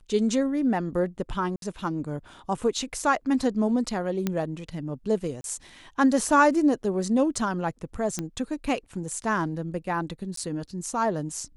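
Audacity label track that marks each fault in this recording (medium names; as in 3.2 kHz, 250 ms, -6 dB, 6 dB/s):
1.560000	1.620000	dropout 62 ms
4.270000	4.270000	pop -12 dBFS
5.410000	5.440000	dropout 32 ms
8.190000	8.190000	pop -15 dBFS
10.360000	10.370000	dropout 13 ms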